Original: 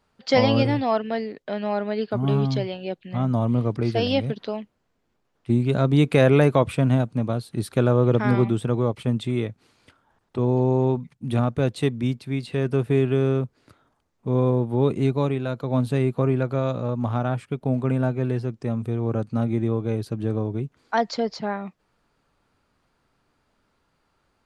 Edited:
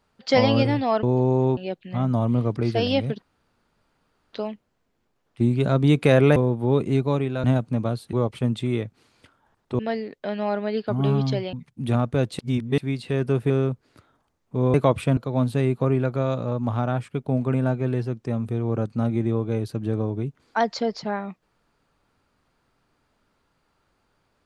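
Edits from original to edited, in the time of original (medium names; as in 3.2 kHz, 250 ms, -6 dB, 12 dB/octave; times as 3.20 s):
1.03–2.77 s: swap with 10.43–10.97 s
4.42 s: insert room tone 1.11 s
6.45–6.88 s: swap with 14.46–15.54 s
7.57–8.77 s: delete
11.83–12.22 s: reverse
12.94–13.22 s: delete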